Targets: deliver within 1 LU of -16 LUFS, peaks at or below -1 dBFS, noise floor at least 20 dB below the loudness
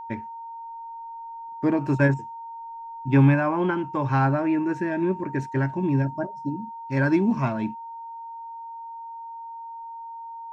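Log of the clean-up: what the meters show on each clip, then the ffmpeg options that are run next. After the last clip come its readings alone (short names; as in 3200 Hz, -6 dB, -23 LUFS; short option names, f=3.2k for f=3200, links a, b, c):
steady tone 920 Hz; tone level -35 dBFS; loudness -24.0 LUFS; peak -7.5 dBFS; loudness target -16.0 LUFS
-> -af "bandreject=f=920:w=30"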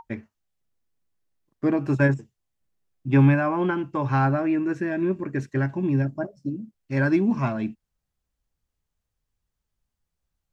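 steady tone none; loudness -24.0 LUFS; peak -8.0 dBFS; loudness target -16.0 LUFS
-> -af "volume=8dB,alimiter=limit=-1dB:level=0:latency=1"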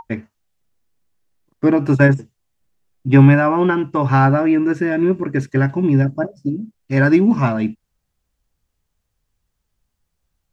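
loudness -16.0 LUFS; peak -1.0 dBFS; noise floor -75 dBFS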